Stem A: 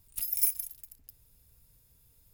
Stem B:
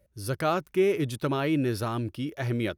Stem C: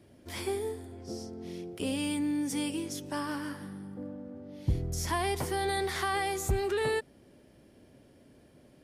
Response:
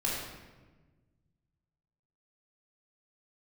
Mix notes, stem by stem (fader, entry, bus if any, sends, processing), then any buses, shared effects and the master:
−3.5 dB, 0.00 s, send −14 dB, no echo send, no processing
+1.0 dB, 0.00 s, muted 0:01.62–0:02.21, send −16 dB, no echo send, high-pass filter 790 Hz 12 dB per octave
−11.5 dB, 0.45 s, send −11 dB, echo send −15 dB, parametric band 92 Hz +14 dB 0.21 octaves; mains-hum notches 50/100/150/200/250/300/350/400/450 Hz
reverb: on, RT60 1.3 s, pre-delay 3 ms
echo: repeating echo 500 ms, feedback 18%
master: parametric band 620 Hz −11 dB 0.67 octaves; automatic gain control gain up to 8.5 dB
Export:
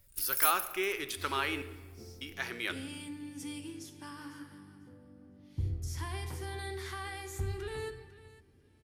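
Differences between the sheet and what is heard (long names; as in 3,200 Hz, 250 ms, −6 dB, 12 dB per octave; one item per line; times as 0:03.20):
stem C: entry 0.45 s → 0.90 s
master: missing automatic gain control gain up to 8.5 dB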